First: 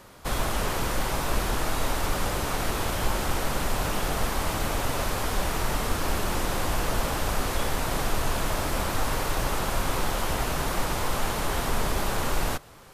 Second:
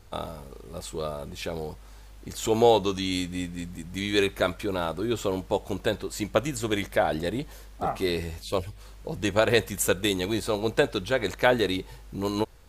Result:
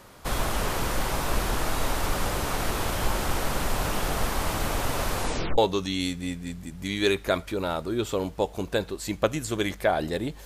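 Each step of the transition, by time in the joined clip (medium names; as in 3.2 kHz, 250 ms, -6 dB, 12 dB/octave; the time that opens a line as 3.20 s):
first
5.17 s: tape stop 0.41 s
5.58 s: go over to second from 2.70 s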